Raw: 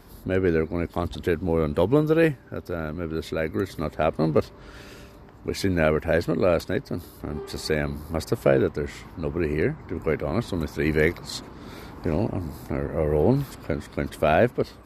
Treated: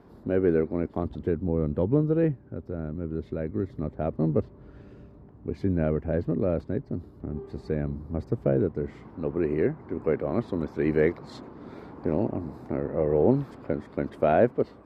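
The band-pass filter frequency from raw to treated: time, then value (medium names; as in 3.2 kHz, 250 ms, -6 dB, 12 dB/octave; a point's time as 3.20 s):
band-pass filter, Q 0.51
0.75 s 330 Hz
1.44 s 140 Hz
8.53 s 140 Hz
9.24 s 380 Hz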